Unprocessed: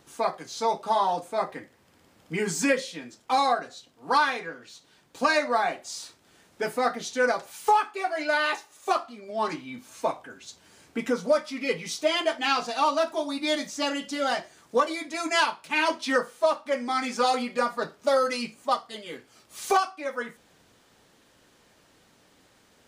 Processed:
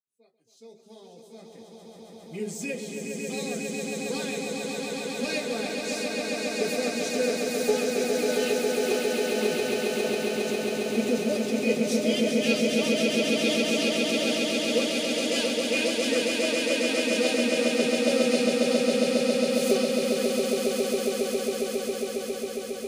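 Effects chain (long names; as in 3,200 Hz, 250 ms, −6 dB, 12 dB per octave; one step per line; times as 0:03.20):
fade in at the beginning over 5.78 s
drawn EQ curve 120 Hz 0 dB, 290 Hz −9 dB, 420 Hz +3 dB, 990 Hz −26 dB, 2,800 Hz −4 dB, 4,300 Hz −4 dB, 12,000 Hz +3 dB
noise reduction from a noise print of the clip's start 11 dB
hollow resonant body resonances 220/2,500 Hz, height 13 dB, ringing for 70 ms
on a send: echo that builds up and dies away 136 ms, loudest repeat 8, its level −4 dB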